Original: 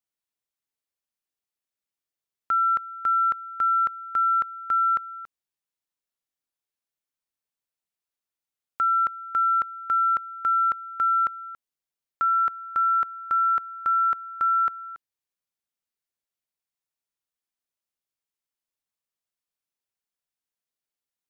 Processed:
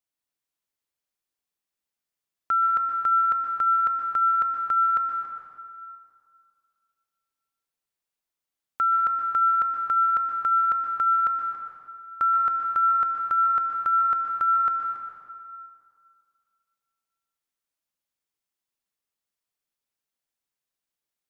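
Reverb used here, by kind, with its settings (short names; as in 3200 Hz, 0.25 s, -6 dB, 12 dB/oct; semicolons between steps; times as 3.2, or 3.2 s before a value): plate-style reverb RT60 2.2 s, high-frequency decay 0.7×, pre-delay 0.11 s, DRR 1.5 dB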